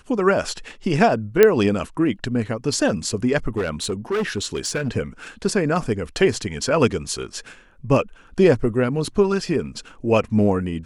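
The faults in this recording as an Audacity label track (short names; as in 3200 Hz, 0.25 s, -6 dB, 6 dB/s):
1.430000	1.430000	pop -1 dBFS
3.490000	4.890000	clipped -18.5 dBFS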